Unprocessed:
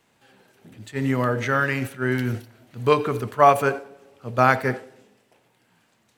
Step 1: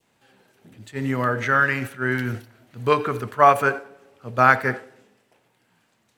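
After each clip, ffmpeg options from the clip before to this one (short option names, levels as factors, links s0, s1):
-af "adynamicequalizer=threshold=0.02:dfrequency=1500:dqfactor=1.3:tfrequency=1500:tqfactor=1.3:attack=5:release=100:ratio=0.375:range=3.5:mode=boostabove:tftype=bell,volume=0.794"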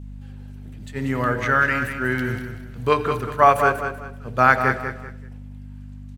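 -af "aeval=exprs='val(0)+0.0178*(sin(2*PI*50*n/s)+sin(2*PI*2*50*n/s)/2+sin(2*PI*3*50*n/s)/3+sin(2*PI*4*50*n/s)/4+sin(2*PI*5*50*n/s)/5)':c=same,aecho=1:1:192|384|576:0.398|0.115|0.0335"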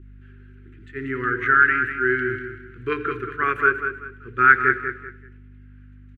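-af "firequalizer=gain_entry='entry(120,0);entry(180,-8);entry(370,14);entry(620,-29);entry(1400,13);entry(4800,-14);entry(6800,-14);entry(10000,-20)':delay=0.05:min_phase=1,volume=0.422"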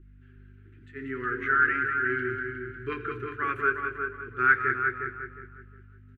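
-filter_complex "[0:a]flanger=delay=6.1:depth=7.1:regen=-39:speed=0.38:shape=triangular,asplit=2[s0][s1];[s1]adelay=359,lowpass=f=2100:p=1,volume=0.531,asplit=2[s2][s3];[s3]adelay=359,lowpass=f=2100:p=1,volume=0.27,asplit=2[s4][s5];[s5]adelay=359,lowpass=f=2100:p=1,volume=0.27,asplit=2[s6][s7];[s7]adelay=359,lowpass=f=2100:p=1,volume=0.27[s8];[s2][s4][s6][s8]amix=inputs=4:normalize=0[s9];[s0][s9]amix=inputs=2:normalize=0,volume=0.668"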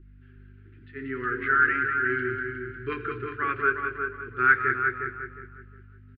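-af "aresample=11025,aresample=44100,volume=1.19"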